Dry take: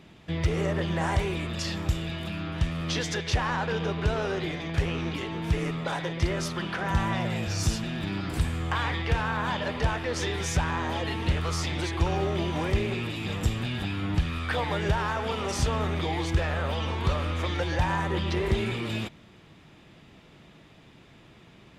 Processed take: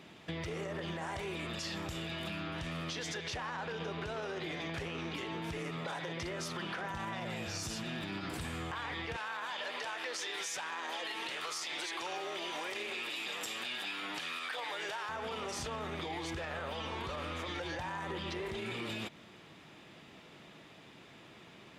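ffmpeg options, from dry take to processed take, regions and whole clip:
-filter_complex "[0:a]asettb=1/sr,asplit=3[s0][s1][s2];[s0]atrim=end=9.164[s3];[s1]atrim=start=9.16:end=15.09,asetpts=PTS-STARTPTS,afade=t=in:d=0.004:c=qsin,afade=t=out:st=5.926:d=0.004:c=qsin,highpass=390,tiltshelf=f=1400:g=-4[s4];[s2]atrim=start=15.086[s5];[s3][s4]acrossfade=d=0.004:c1=hsin:c2=qsin[s6];[s6][s5]acrossfade=d=0.004:c1=qsin:c2=hsin,highpass=f=300:p=1,alimiter=level_in=1.33:limit=0.0631:level=0:latency=1,volume=0.75,acompressor=threshold=0.0141:ratio=6,volume=1.12"

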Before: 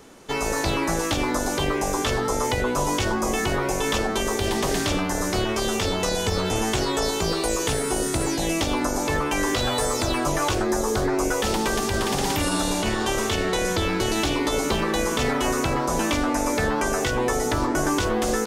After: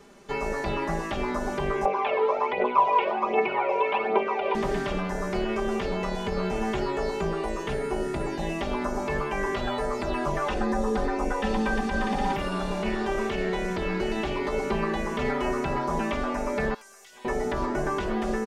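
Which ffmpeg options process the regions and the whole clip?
-filter_complex "[0:a]asettb=1/sr,asplit=3[s0][s1][s2];[s0]atrim=end=1.854[s3];[s1]atrim=start=1.85:end=4.55,asetpts=PTS-STARTPTS,afade=t=in:d=0.004:c=qsin,afade=t=out:st=2.696:d=0.004:c=qsin,highpass=410,equalizer=f=480:t=q:w=4:g=8,equalizer=f=740:t=q:w=4:g=5,equalizer=f=1000:t=q:w=4:g=7,equalizer=f=1700:t=q:w=4:g=-9,equalizer=f=2400:t=q:w=4:g=9,lowpass=f=3100:w=0.5412,lowpass=f=3100:w=1.3066,aphaser=in_gain=1:out_gain=1:delay=2.2:decay=0.58:speed=1.3:type=triangular[s4];[s2]atrim=start=4.546[s5];[s3][s4]acrossfade=d=0.004:c1=hsin:c2=qsin[s6];[s6][s5]acrossfade=d=0.004:c1=qsin:c2=hsin,asettb=1/sr,asplit=3[s7][s8][s9];[s7]atrim=end=10.464[s10];[s8]atrim=start=10.46:end=12.33,asetpts=PTS-STARTPTS,afade=t=in:d=0.004:c=qsin,afade=t=out:st=1.866:d=0.004:c=qsin,lowpass=f=12000:w=0.5412,lowpass=f=12000:w=1.3066,aecho=1:1:3.9:0.71,atrim=end_sample=82467[s11];[s9]atrim=start=12.326[s12];[s10][s11]acrossfade=d=0.004:c1=hsin:c2=qsin[s13];[s13][s12]acrossfade=d=0.004:c1=qsin:c2=hsin,asettb=1/sr,asplit=3[s14][s15][s16];[s14]atrim=end=16.744[s17];[s15]atrim=start=16.74:end=17.25,asetpts=PTS-STARTPTS,afade=t=in:d=0.004:c=qsin,afade=t=out:st=0.506:d=0.004:c=qsin,aderivative,acompressor=threshold=0.0141:ratio=6:attack=3.2:release=140:knee=1:detection=peak,aeval=exprs='(tanh(35.5*val(0)+0.15)-tanh(0.15))/35.5':c=same[s18];[s16]atrim=start=17.246[s19];[s17][s18]acrossfade=d=0.004:c1=hsin:c2=qsin[s20];[s20][s19]acrossfade=d=0.004:c1=qsin:c2=hsin,acrossover=split=2800[s21][s22];[s22]acompressor=threshold=0.00794:ratio=4:attack=1:release=60[s23];[s21][s23]amix=inputs=2:normalize=0,highshelf=f=8400:g=-10.5,aecho=1:1:5:0.74,volume=0.531"

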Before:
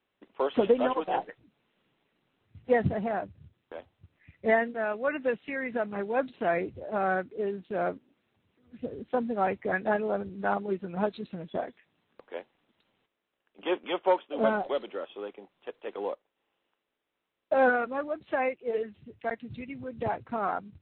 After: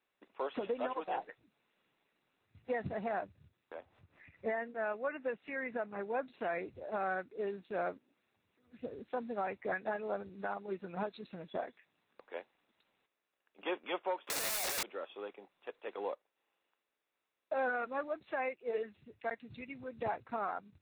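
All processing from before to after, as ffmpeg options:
-filter_complex "[0:a]asettb=1/sr,asplit=3[s0][s1][s2];[s0]atrim=end=3.744[s3];[s1]atrim=start=3.74:end=6.3,asetpts=PTS-STARTPTS,afade=t=in:d=0.004:c=qsin,afade=t=out:st=2.556:d=0.004:c=qsin,lowpass=f=2000:p=1,acompressor=mode=upward:threshold=0.00562:ratio=2.5:attack=3.2:release=140:knee=2.83:detection=peak[s4];[s2]atrim=start=6.296[s5];[s3][s4]acrossfade=d=0.004:c1=hsin:c2=qsin[s6];[s6][s5]acrossfade=d=0.004:c1=qsin:c2=hsin,asettb=1/sr,asplit=3[s7][s8][s9];[s7]atrim=end=14.274[s10];[s8]atrim=start=14.27:end=14.83,asetpts=PTS-STARTPTS,afade=t=in:d=0.004:c=qsin,afade=t=out:st=0.556:d=0.004:c=qsin,lowshelf=f=440:g=-5.5,asplit=2[s11][s12];[s12]highpass=f=720:p=1,volume=89.1,asoftclip=type=tanh:threshold=0.2[s13];[s11][s13]amix=inputs=2:normalize=0,lowpass=f=3100:p=1,volume=0.501,aeval=exprs='(mod(16.8*val(0)+1,2)-1)/16.8':c=same[s14];[s9]atrim=start=14.826[s15];[s10][s14]acrossfade=d=0.004:c1=hsin:c2=qsin[s16];[s16][s15]acrossfade=d=0.004:c1=qsin:c2=hsin,lowshelf=f=390:g=-9.5,bandreject=f=3100:w=10,alimiter=level_in=1.06:limit=0.0631:level=0:latency=1:release=287,volume=0.944,volume=0.794"

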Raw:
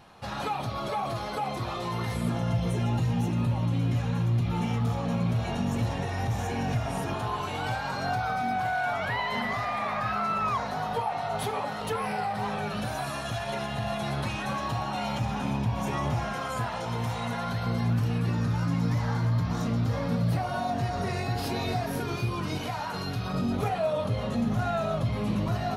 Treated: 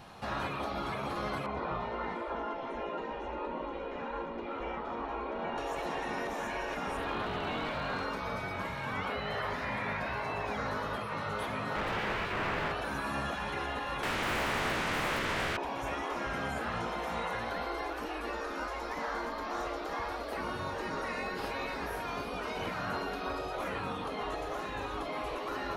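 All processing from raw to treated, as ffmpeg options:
-filter_complex "[0:a]asettb=1/sr,asplit=3[s0][s1][s2];[s0]atrim=end=1.464[s3];[s1]atrim=start=1.46:end=5.58,asetpts=PTS-STARTPTS,afade=t=in:d=0.004:c=qsin,afade=t=out:st=4.116:d=0.004:c=qsin,lowpass=1600,aecho=1:1:2.1:0.47,atrim=end_sample=181692[s4];[s2]atrim=start=5.576[s5];[s3][s4]acrossfade=d=0.004:c1=hsin:c2=qsin[s6];[s6][s5]acrossfade=d=0.004:c1=qsin:c2=hsin,asettb=1/sr,asplit=3[s7][s8][s9];[s7]atrim=end=6.974[s10];[s8]atrim=start=6.97:end=8.04,asetpts=PTS-STARTPTS,afade=t=in:d=0.004:c=qsin,afade=t=out:st=1.066:d=0.004:c=qsin,highshelf=f=4900:t=q:w=3:g=-7,volume=25.1,asoftclip=hard,volume=0.0398[s11];[s9]atrim=start=8.036[s12];[s10][s11]acrossfade=d=0.004:c1=hsin:c2=qsin[s13];[s13][s12]acrossfade=d=0.004:c1=qsin:c2=hsin,asettb=1/sr,asplit=3[s14][s15][s16];[s14]atrim=end=11.754[s17];[s15]atrim=start=11.75:end=12.72,asetpts=PTS-STARTPTS,afade=t=in:d=0.004:c=qsin,afade=t=out:st=0.966:d=0.004:c=qsin,bass=f=250:g=7,treble=f=4000:g=-6,asplit=2[s18][s19];[s19]highpass=f=720:p=1,volume=5.62,asoftclip=type=tanh:threshold=0.133[s20];[s18][s20]amix=inputs=2:normalize=0,lowpass=f=2400:p=1,volume=0.501,aeval=exprs='0.0398*(abs(mod(val(0)/0.0398+3,4)-2)-1)':c=same[s21];[s16]atrim=start=12.716[s22];[s17][s21]acrossfade=d=0.004:c1=hsin:c2=qsin[s23];[s23][s22]acrossfade=d=0.004:c1=qsin:c2=hsin,asettb=1/sr,asplit=3[s24][s25][s26];[s24]atrim=end=14.034[s27];[s25]atrim=start=14.03:end=15.57,asetpts=PTS-STARTPTS,afade=t=in:d=0.004:c=qsin,afade=t=out:st=1.536:d=0.004:c=qsin,highpass=920,aeval=exprs='0.0668*sin(PI/2*7.94*val(0)/0.0668)':c=same[s28];[s26]atrim=start=15.566[s29];[s27][s28]acrossfade=d=0.004:c1=hsin:c2=qsin[s30];[s30][s29]acrossfade=d=0.004:c1=qsin:c2=hsin,acontrast=28,afftfilt=real='re*lt(hypot(re,im),0.158)':imag='im*lt(hypot(re,im),0.158)':win_size=1024:overlap=0.75,acrossover=split=2500[s31][s32];[s32]acompressor=threshold=0.00355:ratio=4:attack=1:release=60[s33];[s31][s33]amix=inputs=2:normalize=0,volume=0.75"

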